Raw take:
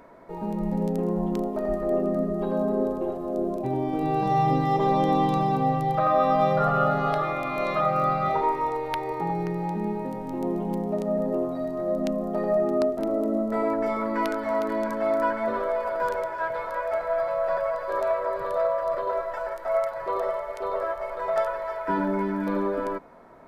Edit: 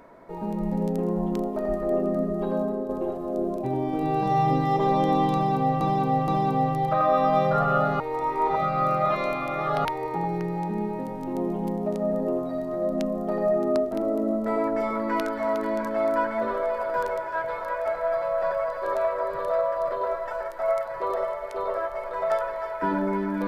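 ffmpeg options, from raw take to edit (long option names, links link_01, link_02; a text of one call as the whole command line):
ffmpeg -i in.wav -filter_complex "[0:a]asplit=6[link_01][link_02][link_03][link_04][link_05][link_06];[link_01]atrim=end=2.89,asetpts=PTS-STARTPTS,afade=type=out:start_time=2.55:duration=0.34:silence=0.398107[link_07];[link_02]atrim=start=2.89:end=5.812,asetpts=PTS-STARTPTS,afade=type=in:duration=0.004:curve=hsin:silence=0.398107[link_08];[link_03]atrim=start=5.338:end=5.812[link_09];[link_04]atrim=start=5.338:end=7.062[link_10];[link_05]atrim=start=7.058:end=8.912,asetpts=PTS-STARTPTS,areverse[link_11];[link_06]atrim=start=8.908[link_12];[link_07][link_08]concat=n=2:v=0:a=1[link_13];[link_13][link_09]acrossfade=duration=0.004:curve1=hsin:curve2=hsin[link_14];[link_14][link_10]acrossfade=duration=0.004:curve1=hsin:curve2=hsin[link_15];[link_15][link_11]acrossfade=duration=0.004:curve1=hsin:curve2=hsin[link_16];[link_16][link_12]acrossfade=duration=0.004:curve1=hsin:curve2=hsin" out.wav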